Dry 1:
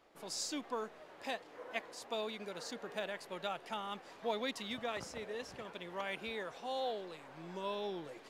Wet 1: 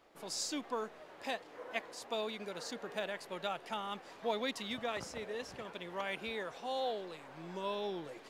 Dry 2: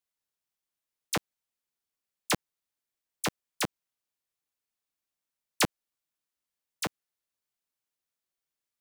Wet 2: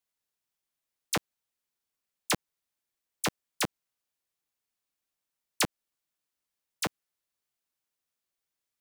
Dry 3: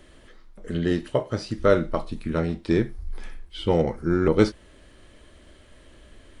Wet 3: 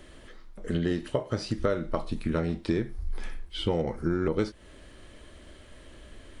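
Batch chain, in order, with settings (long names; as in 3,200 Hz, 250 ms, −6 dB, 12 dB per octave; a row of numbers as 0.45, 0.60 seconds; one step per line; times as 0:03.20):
downward compressor 6 to 1, threshold −25 dBFS
level +1.5 dB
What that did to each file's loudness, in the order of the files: +1.5, 0.0, −6.0 LU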